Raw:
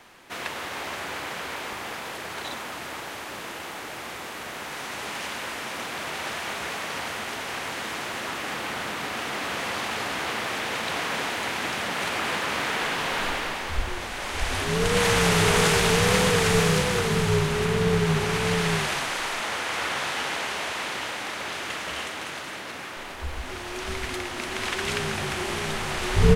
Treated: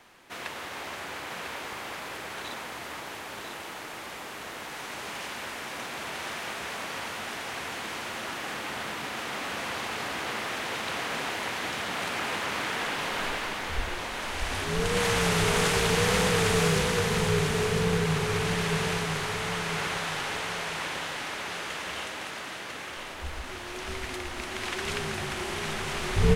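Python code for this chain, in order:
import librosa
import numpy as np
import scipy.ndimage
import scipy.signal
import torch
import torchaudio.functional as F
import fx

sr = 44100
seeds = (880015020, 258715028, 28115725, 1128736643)

y = fx.echo_feedback(x, sr, ms=999, feedback_pct=35, wet_db=-6.0)
y = y * librosa.db_to_amplitude(-4.5)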